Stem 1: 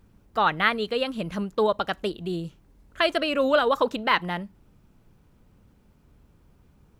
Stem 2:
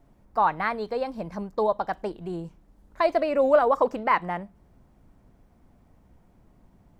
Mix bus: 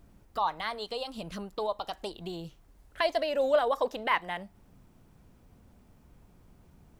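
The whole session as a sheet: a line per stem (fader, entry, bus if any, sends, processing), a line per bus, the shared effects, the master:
-2.0 dB, 0.00 s, no send, compression, threshold -28 dBFS, peak gain reduction 12 dB
-5.0 dB, 0.00 s, polarity flipped, no send, treble shelf 3.4 kHz +10.5 dB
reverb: none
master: none

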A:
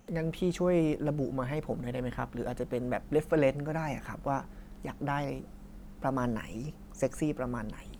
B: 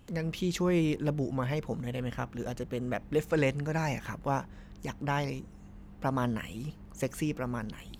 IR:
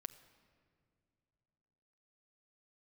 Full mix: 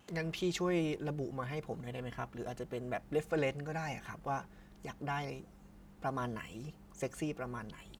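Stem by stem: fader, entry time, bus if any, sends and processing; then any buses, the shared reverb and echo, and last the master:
-7.0 dB, 0.00 s, no send, high-pass 46 Hz
+0.5 dB, 2.7 ms, no send, frequency weighting A; auto duck -9 dB, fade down 1.15 s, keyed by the first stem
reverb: none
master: none

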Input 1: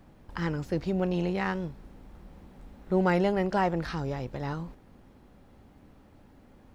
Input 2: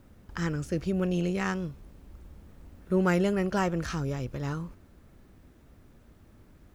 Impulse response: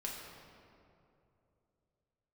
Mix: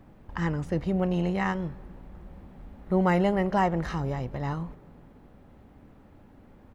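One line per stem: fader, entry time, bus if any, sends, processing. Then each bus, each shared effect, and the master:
+1.5 dB, 0.00 s, send -19 dB, Gaussian low-pass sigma 2.3 samples
-8.5 dB, 1 ms, no send, none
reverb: on, RT60 2.8 s, pre-delay 5 ms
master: none

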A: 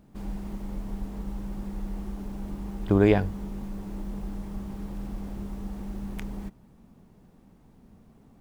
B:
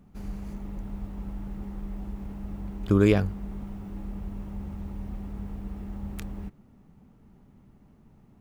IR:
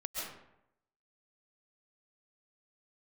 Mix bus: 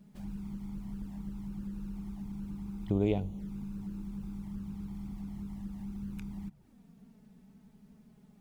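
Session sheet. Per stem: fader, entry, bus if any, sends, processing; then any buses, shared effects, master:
-9.0 dB, 0.00 s, no send, none
+2.0 dB, 0.00 s, no send, compression 12:1, threshold -36 dBFS, peak gain reduction 21 dB; band-pass filter 170 Hz, Q 1.8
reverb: none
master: peaking EQ 1.1 kHz -4.5 dB 0.37 oct; touch-sensitive flanger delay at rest 6.1 ms, full sweep at -32 dBFS; tape noise reduction on one side only encoder only

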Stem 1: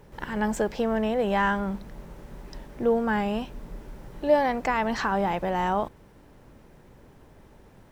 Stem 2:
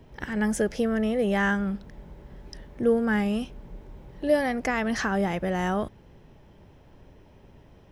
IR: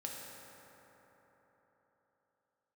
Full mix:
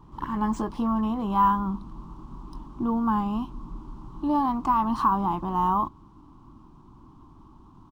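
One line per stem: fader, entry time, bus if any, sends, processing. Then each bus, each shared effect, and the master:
+1.5 dB, 0.00 s, no send, FFT filter 200 Hz 0 dB, 320 Hz +5 dB, 510 Hz -25 dB, 1.1 kHz +11 dB, 1.9 kHz -29 dB, 3 kHz -8 dB
-9.0 dB, 22 ms, no send, auto duck -16 dB, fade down 1.85 s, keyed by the first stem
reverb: none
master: decimation joined by straight lines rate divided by 3×

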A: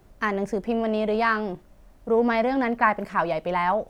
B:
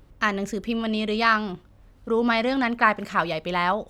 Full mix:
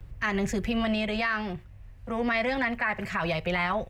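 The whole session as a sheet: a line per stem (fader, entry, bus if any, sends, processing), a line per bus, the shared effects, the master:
-5.5 dB, 0.00 s, no send, gate -41 dBFS, range -6 dB; high-pass 510 Hz 12 dB/octave; high-order bell 2.2 kHz +13.5 dB 1 oct
-2.5 dB, 6.7 ms, no send, resonant low shelf 170 Hz +10 dB, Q 1.5; gain riding 0.5 s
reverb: none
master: peak limiter -18.5 dBFS, peak gain reduction 13 dB

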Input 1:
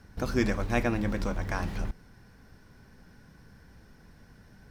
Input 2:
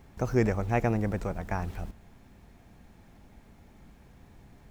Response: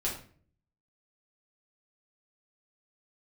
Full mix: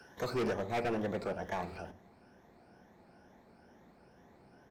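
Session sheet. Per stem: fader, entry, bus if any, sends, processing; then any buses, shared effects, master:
+1.5 dB, 0.00 s, no send, drifting ripple filter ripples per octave 1.1, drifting +2.2 Hz, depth 15 dB; high-pass 810 Hz; treble shelf 6.7 kHz -5.5 dB; auto duck -12 dB, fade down 0.60 s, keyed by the second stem
0.0 dB, 7 ms, send -14.5 dB, band-pass filter 560 Hz, Q 0.92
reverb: on, RT60 0.45 s, pre-delay 5 ms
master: hard clipper -29.5 dBFS, distortion -5 dB

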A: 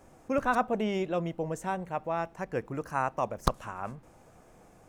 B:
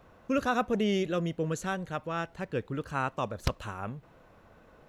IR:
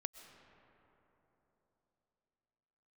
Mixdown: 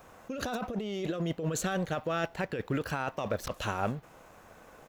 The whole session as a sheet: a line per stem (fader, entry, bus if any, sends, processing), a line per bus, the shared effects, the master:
-2.5 dB, 0.00 s, no send, high-pass 770 Hz 24 dB/octave; treble shelf 10 kHz +10 dB
+1.5 dB, 0.4 ms, no send, bass shelf 280 Hz -6.5 dB; waveshaping leveller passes 1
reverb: none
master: peaking EQ 9.1 kHz -7 dB 0.52 oct; compressor with a negative ratio -32 dBFS, ratio -1

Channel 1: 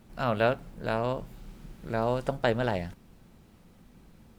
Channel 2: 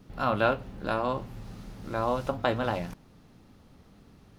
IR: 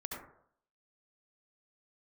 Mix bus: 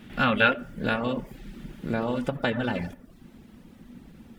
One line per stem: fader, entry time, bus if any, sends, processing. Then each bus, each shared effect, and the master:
+0.5 dB, 0.00 s, send -4.5 dB, peaking EQ 250 Hz +9.5 dB 0.9 oct; compression 4:1, threshold -27 dBFS, peak gain reduction 9 dB
-1.0 dB, 0.00 s, polarity flipped, send -16 dB, high-order bell 2.4 kHz +15.5 dB; band-stop 4.1 kHz, Q 11; auto duck -14 dB, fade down 1.70 s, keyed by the first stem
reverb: on, RT60 0.65 s, pre-delay 63 ms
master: reverb removal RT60 0.57 s

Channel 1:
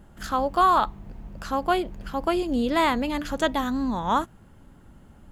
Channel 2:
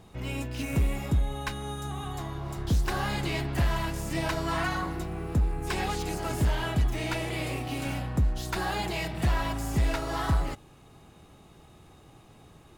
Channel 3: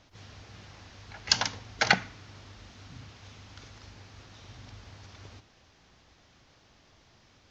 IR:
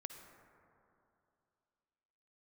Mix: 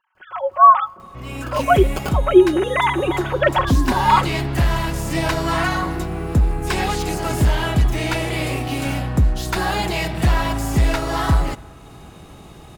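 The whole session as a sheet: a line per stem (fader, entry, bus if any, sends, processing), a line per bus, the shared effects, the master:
-5.5 dB, 0.00 s, send -16 dB, formants replaced by sine waves; comb 5.4 ms, depth 88%
-7.0 dB, 1.00 s, send -9 dB, upward compressor, threshold -44 dBFS
+2.0 dB, 0.15 s, no send, low-pass 2 kHz; sample-and-hold 23×; tremolo triangle 5.7 Hz, depth 75%; auto duck -11 dB, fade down 0.25 s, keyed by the first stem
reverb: on, RT60 2.7 s, pre-delay 48 ms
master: level rider gain up to 14.5 dB

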